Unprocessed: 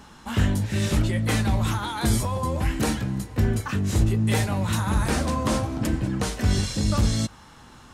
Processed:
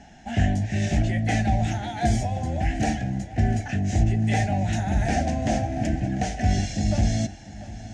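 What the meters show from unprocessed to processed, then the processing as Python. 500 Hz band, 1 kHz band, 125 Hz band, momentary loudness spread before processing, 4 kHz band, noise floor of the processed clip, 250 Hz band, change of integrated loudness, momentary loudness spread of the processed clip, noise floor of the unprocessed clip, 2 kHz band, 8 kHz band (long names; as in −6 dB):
−0.5 dB, +2.5 dB, 0.0 dB, 4 LU, −5.0 dB, −41 dBFS, 0.0 dB, 0.0 dB, 5 LU, −48 dBFS, −0.5 dB, −4.5 dB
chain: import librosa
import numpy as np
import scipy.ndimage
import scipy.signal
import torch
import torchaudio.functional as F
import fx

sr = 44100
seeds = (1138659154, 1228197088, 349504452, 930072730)

p1 = fx.curve_eq(x, sr, hz=(270.0, 510.0, 720.0, 1100.0, 1700.0, 2800.0, 4000.0, 6400.0, 13000.0), db=(0, -9, 14, -29, 2, -2, -9, 0, -30))
y = p1 + fx.echo_feedback(p1, sr, ms=697, feedback_pct=47, wet_db=-16.5, dry=0)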